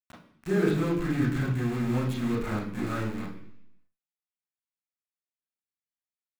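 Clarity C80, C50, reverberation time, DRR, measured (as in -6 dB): 8.5 dB, 5.0 dB, 0.70 s, -5.5 dB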